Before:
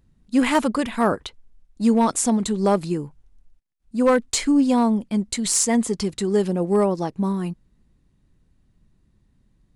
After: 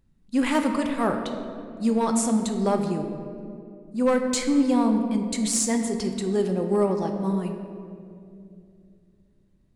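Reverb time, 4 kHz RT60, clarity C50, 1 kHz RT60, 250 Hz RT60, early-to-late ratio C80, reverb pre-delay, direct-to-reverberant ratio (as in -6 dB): 2.6 s, 1.3 s, 6.0 dB, 2.1 s, 3.3 s, 7.0 dB, 4 ms, 4.0 dB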